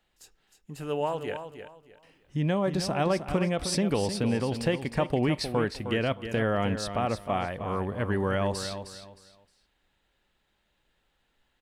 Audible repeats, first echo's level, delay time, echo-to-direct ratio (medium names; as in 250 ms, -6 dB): 3, -9.5 dB, 310 ms, -9.0 dB